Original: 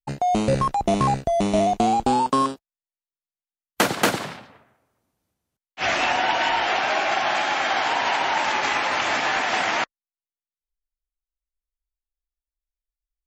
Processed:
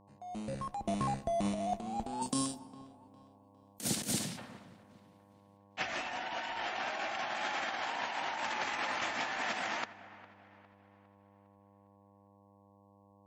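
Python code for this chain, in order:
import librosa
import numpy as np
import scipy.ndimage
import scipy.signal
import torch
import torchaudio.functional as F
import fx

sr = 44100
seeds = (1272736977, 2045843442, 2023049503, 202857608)

y = fx.fade_in_head(x, sr, length_s=3.08)
y = fx.curve_eq(y, sr, hz=(210.0, 1200.0, 6500.0), db=(0, -16, 7), at=(2.21, 4.37), fade=0.02)
y = fx.dmg_buzz(y, sr, base_hz=100.0, harmonics=11, level_db=-59.0, tilt_db=-2, odd_only=False)
y = fx.small_body(y, sr, hz=(220.0, 1800.0), ring_ms=75, db=6)
y = fx.over_compress(y, sr, threshold_db=-26.0, ratio=-0.5)
y = fx.peak_eq(y, sr, hz=9000.0, db=6.5, octaves=0.27)
y = fx.notch(y, sr, hz=410.0, q=12.0)
y = fx.echo_wet_lowpass(y, sr, ms=406, feedback_pct=42, hz=2600.0, wet_db=-18)
y = fx.rev_plate(y, sr, seeds[0], rt60_s=2.6, hf_ratio=0.45, predelay_ms=0, drr_db=19.5)
y = F.gain(torch.from_numpy(y), -8.5).numpy()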